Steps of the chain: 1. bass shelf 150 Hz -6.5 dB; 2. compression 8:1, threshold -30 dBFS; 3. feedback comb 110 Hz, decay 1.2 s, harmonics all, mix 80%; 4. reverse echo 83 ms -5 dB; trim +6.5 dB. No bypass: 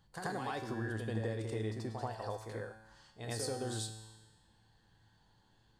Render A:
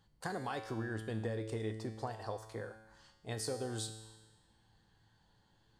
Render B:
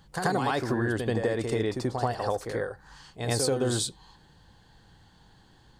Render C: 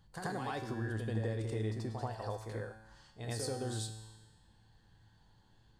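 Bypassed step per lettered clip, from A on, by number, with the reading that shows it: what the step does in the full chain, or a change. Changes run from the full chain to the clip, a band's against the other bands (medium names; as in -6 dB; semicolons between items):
4, loudness change -1.0 LU; 3, 125 Hz band -3.0 dB; 1, 125 Hz band +3.5 dB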